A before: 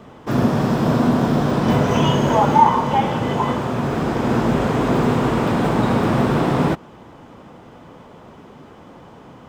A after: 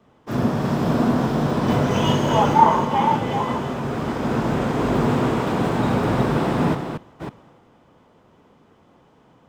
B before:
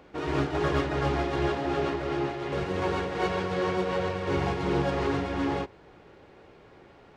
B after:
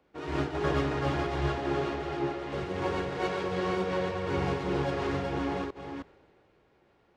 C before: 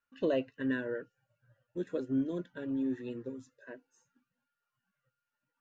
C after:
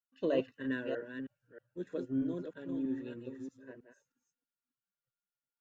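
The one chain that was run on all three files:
delay that plays each chunk backwards 317 ms, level −5 dB
multiband upward and downward expander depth 40%
level −3.5 dB

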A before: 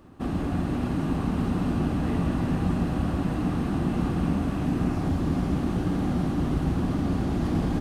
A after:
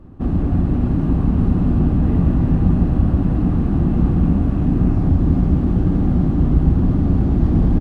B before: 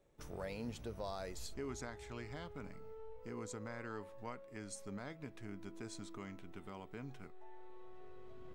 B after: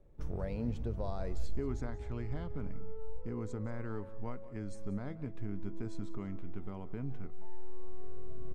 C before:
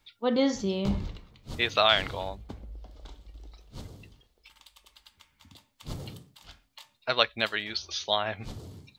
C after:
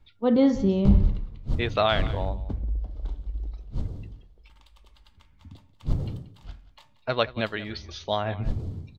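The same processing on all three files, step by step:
spectral tilt −3.5 dB per octave
single-tap delay 182 ms −17 dB

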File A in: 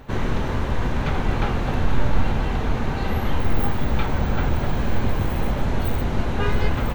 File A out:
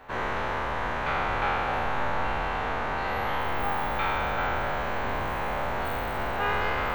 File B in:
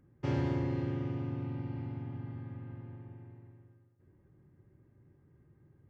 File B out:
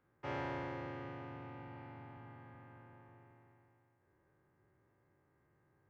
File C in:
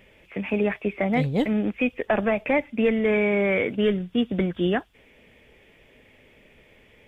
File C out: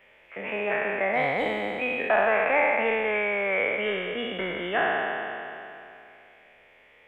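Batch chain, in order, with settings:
peak hold with a decay on every bin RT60 2.77 s
three-way crossover with the lows and the highs turned down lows −18 dB, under 550 Hz, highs −12 dB, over 2,600 Hz

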